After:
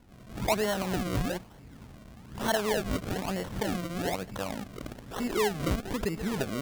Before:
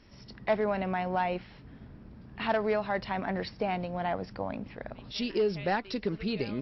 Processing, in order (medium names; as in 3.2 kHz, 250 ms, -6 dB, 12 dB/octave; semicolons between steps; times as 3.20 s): decimation with a swept rate 35×, swing 100% 1.1 Hz; swell ahead of each attack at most 110 dB/s